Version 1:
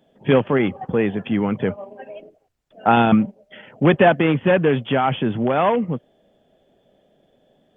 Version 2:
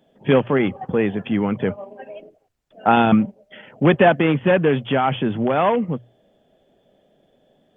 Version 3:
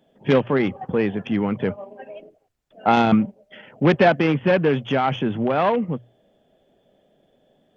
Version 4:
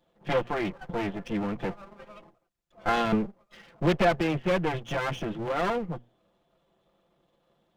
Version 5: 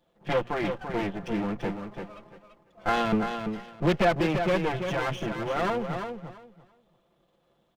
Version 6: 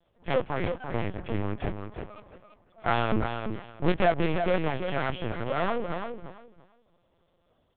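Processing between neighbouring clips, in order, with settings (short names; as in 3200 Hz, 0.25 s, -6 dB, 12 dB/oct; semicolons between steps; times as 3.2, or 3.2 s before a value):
notches 60/120 Hz
self-modulated delay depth 0.084 ms; gain -1.5 dB
minimum comb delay 5.8 ms; gain -6.5 dB
feedback echo 0.339 s, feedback 19%, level -7 dB
LPC vocoder at 8 kHz pitch kept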